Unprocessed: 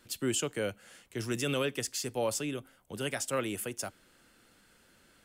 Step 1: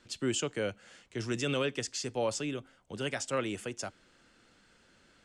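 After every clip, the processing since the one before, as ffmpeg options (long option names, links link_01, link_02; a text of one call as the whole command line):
ffmpeg -i in.wav -af "lowpass=frequency=7500:width=0.5412,lowpass=frequency=7500:width=1.3066" out.wav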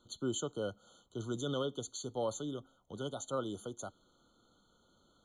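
ffmpeg -i in.wav -af "afftfilt=real='re*eq(mod(floor(b*sr/1024/1500),2),0)':imag='im*eq(mod(floor(b*sr/1024/1500),2),0)':win_size=1024:overlap=0.75,volume=-4dB" out.wav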